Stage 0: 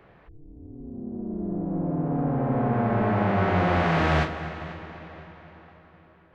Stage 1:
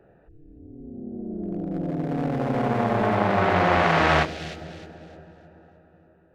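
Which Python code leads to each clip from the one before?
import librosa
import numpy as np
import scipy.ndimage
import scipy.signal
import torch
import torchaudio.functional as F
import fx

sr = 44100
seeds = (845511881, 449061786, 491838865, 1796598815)

y = fx.wiener(x, sr, points=41)
y = fx.low_shelf(y, sr, hz=380.0, db=-12.0)
y = fx.echo_wet_highpass(y, sr, ms=306, feedback_pct=31, hz=3900.0, wet_db=-5)
y = F.gain(torch.from_numpy(y), 8.5).numpy()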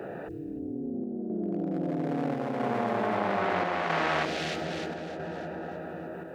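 y = fx.chopper(x, sr, hz=0.77, depth_pct=60, duty_pct=80)
y = scipy.signal.sosfilt(scipy.signal.butter(2, 190.0, 'highpass', fs=sr, output='sos'), y)
y = fx.env_flatten(y, sr, amount_pct=70)
y = F.gain(torch.from_numpy(y), -8.5).numpy()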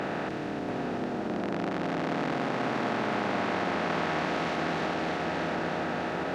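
y = fx.bin_compress(x, sr, power=0.2)
y = fx.high_shelf(y, sr, hz=6200.0, db=-5.0)
y = y + 10.0 ** (-6.0 / 20.0) * np.pad(y, (int(687 * sr / 1000.0), 0))[:len(y)]
y = F.gain(torch.from_numpy(y), -7.5).numpy()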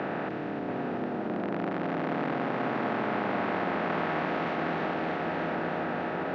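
y = fx.bandpass_edges(x, sr, low_hz=100.0, high_hz=2600.0)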